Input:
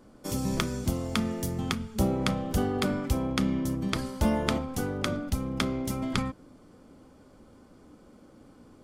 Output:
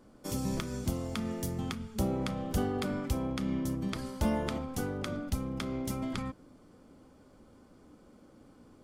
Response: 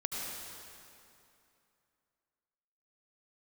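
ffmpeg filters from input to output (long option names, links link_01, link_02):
-af "alimiter=limit=-15dB:level=0:latency=1:release=149,volume=-3.5dB"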